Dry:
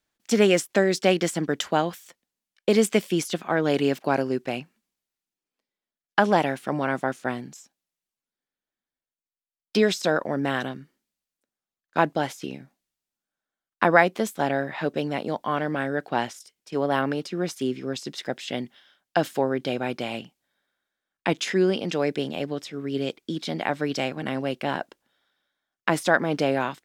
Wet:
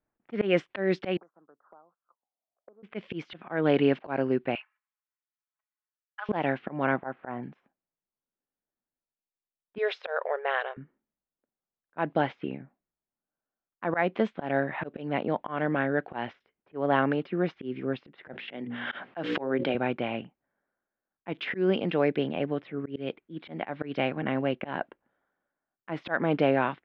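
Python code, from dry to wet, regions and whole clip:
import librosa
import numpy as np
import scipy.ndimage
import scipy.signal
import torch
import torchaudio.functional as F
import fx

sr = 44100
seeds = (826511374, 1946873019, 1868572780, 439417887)

y = fx.chain(x, sr, fx.cheby1_bandstop(low_hz=1300.0, high_hz=6500.0, order=4),
    fx.auto_wah(base_hz=650.0, top_hz=2800.0, q=8.9, full_db=-24.0, direction='up'),
    fx.band_squash(depth_pct=70), at=(1.17, 2.83))
y = fx.chain(y, sr, fx.highpass(hz=1100.0, slope=24),
    fx.comb(ms=4.7, depth=0.75), at=(4.55, 6.29))
y = fx.chain(y, sr, fx.cheby1_lowpass(hz=1600.0, order=2),
    fx.peak_eq(hz=820.0, db=7.0, octaves=0.96), at=(6.96, 7.43))
y = fx.chain(y, sr, fx.brickwall_highpass(low_hz=400.0),
    fx.high_shelf(hz=7600.0, db=-4.0), at=(9.78, 10.77))
y = fx.chain(y, sr, fx.highpass(hz=160.0, slope=12),
    fx.hum_notches(base_hz=60, count=9),
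    fx.pre_swell(db_per_s=37.0), at=(18.33, 19.75))
y = scipy.signal.sosfilt(scipy.signal.butter(4, 2900.0, 'lowpass', fs=sr, output='sos'), y)
y = fx.env_lowpass(y, sr, base_hz=1100.0, full_db=-18.0)
y = fx.auto_swell(y, sr, attack_ms=171.0)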